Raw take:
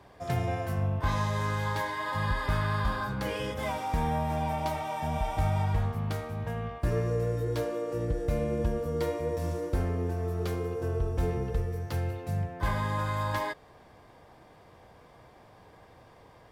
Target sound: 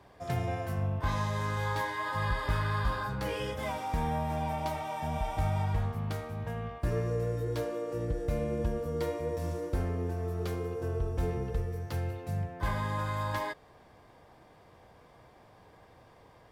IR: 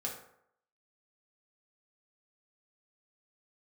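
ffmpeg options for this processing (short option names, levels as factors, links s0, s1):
-filter_complex "[0:a]asettb=1/sr,asplit=3[s0][s1][s2];[s0]atrim=end=1.554[s3];[s1]atrim=start=1.55:end=3.56,asetpts=PTS-STARTPTS,afade=t=in:d=0.004:c=qsin,afade=t=out:st=2.006:d=0.004:c=qsin,asplit=2[s4][s5];[s5]adelay=17,volume=0.473[s6];[s4][s6]amix=inputs=2:normalize=0,atrim=end_sample=88641[s7];[s2]atrim=start=3.556[s8];[s3][s7]acrossfade=d=0.004:c1=hsin:c2=qsin[s9];[s9][s8]acrossfade=d=0.004:c1=qsin:c2=hsin,volume=0.75"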